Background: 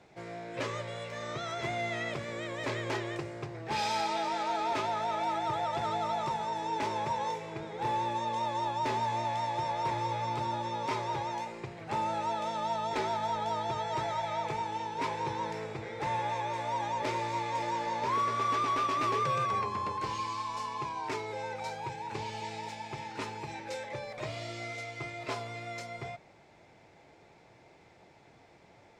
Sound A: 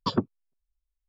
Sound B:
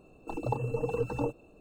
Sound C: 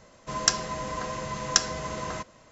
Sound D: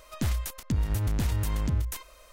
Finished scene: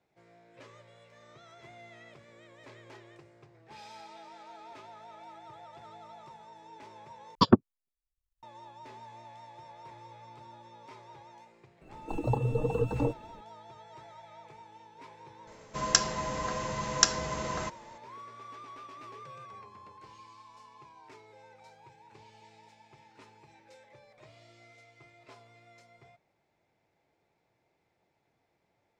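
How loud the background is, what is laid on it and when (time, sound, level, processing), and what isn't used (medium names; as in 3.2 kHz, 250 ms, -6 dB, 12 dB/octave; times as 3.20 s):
background -17.5 dB
7.35 s: replace with A -2 dB + transient shaper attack +8 dB, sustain -11 dB
11.81 s: add B -1 dB + bass shelf 290 Hz +6.5 dB
15.47 s: add C -1 dB
not used: D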